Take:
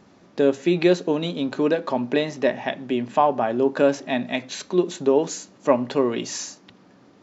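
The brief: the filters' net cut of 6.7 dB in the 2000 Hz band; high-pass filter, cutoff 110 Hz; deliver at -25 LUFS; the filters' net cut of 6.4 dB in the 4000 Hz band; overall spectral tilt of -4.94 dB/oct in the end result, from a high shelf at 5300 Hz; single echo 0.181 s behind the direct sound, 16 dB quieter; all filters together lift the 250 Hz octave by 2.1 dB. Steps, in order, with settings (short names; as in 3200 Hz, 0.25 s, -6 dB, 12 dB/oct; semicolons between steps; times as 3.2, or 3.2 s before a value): HPF 110 Hz; bell 250 Hz +3 dB; bell 2000 Hz -7 dB; bell 4000 Hz -4 dB; high shelf 5300 Hz -4 dB; echo 0.181 s -16 dB; gain -3 dB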